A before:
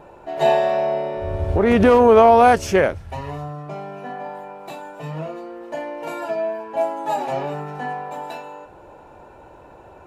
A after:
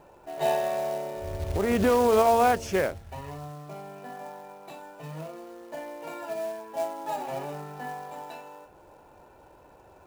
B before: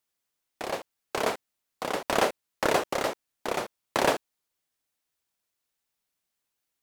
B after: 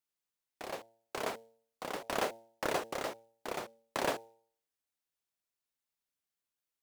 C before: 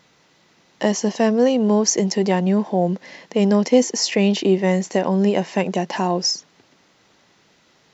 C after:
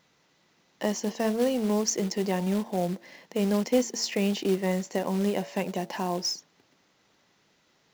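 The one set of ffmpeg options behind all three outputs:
-af "bandreject=f=114:t=h:w=4,bandreject=f=228:t=h:w=4,bandreject=f=342:t=h:w=4,bandreject=f=456:t=h:w=4,bandreject=f=570:t=h:w=4,bandreject=f=684:t=h:w=4,bandreject=f=798:t=h:w=4,bandreject=f=912:t=h:w=4,acrusher=bits=4:mode=log:mix=0:aa=0.000001,volume=0.355"

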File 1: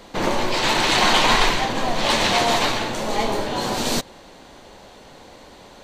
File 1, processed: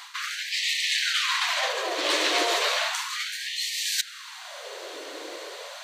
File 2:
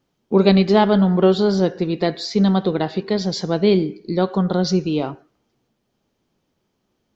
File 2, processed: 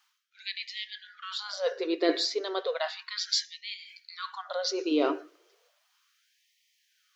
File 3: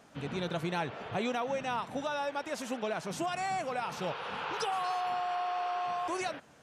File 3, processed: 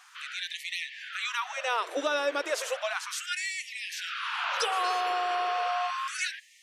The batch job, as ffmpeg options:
-af "equalizer=f=830:w=3.8:g=-12,areverse,acompressor=threshold=0.0355:ratio=10,areverse,afftfilt=real='re*gte(b*sr/1024,270*pow(1800/270,0.5+0.5*sin(2*PI*0.34*pts/sr)))':imag='im*gte(b*sr/1024,270*pow(1800/270,0.5+0.5*sin(2*PI*0.34*pts/sr)))':win_size=1024:overlap=0.75,volume=2.82"

